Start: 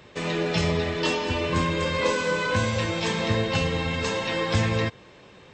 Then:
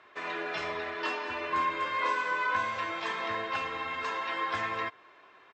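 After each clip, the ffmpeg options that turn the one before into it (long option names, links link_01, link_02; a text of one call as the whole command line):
ffmpeg -i in.wav -af "bandpass=frequency=1300:width_type=q:width=1.6:csg=0,aecho=1:1:2.9:0.49" out.wav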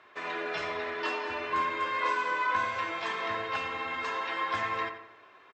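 ffmpeg -i in.wav -filter_complex "[0:a]asplit=2[link_01][link_02];[link_02]adelay=88,lowpass=frequency=3300:poles=1,volume=-9dB,asplit=2[link_03][link_04];[link_04]adelay=88,lowpass=frequency=3300:poles=1,volume=0.48,asplit=2[link_05][link_06];[link_06]adelay=88,lowpass=frequency=3300:poles=1,volume=0.48,asplit=2[link_07][link_08];[link_08]adelay=88,lowpass=frequency=3300:poles=1,volume=0.48,asplit=2[link_09][link_10];[link_10]adelay=88,lowpass=frequency=3300:poles=1,volume=0.48[link_11];[link_01][link_03][link_05][link_07][link_09][link_11]amix=inputs=6:normalize=0" out.wav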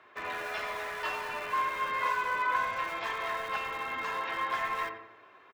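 ffmpeg -i in.wav -filter_complex "[0:a]equalizer=frequency=5000:width=0.79:gain=-4.5,acrossover=split=440[link_01][link_02];[link_01]aeval=exprs='(mod(168*val(0)+1,2)-1)/168':channel_layout=same[link_03];[link_03][link_02]amix=inputs=2:normalize=0" out.wav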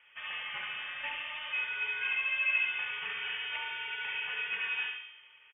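ffmpeg -i in.wav -filter_complex "[0:a]asplit=2[link_01][link_02];[link_02]adelay=72,lowpass=frequency=2400:poles=1,volume=-3.5dB,asplit=2[link_03][link_04];[link_04]adelay=72,lowpass=frequency=2400:poles=1,volume=0.54,asplit=2[link_05][link_06];[link_06]adelay=72,lowpass=frequency=2400:poles=1,volume=0.54,asplit=2[link_07][link_08];[link_08]adelay=72,lowpass=frequency=2400:poles=1,volume=0.54,asplit=2[link_09][link_10];[link_10]adelay=72,lowpass=frequency=2400:poles=1,volume=0.54,asplit=2[link_11][link_12];[link_12]adelay=72,lowpass=frequency=2400:poles=1,volume=0.54,asplit=2[link_13][link_14];[link_14]adelay=72,lowpass=frequency=2400:poles=1,volume=0.54[link_15];[link_01][link_03][link_05][link_07][link_09][link_11][link_13][link_15]amix=inputs=8:normalize=0,lowpass=frequency=3100:width_type=q:width=0.5098,lowpass=frequency=3100:width_type=q:width=0.6013,lowpass=frequency=3100:width_type=q:width=0.9,lowpass=frequency=3100:width_type=q:width=2.563,afreqshift=-3600,volume=-4.5dB" out.wav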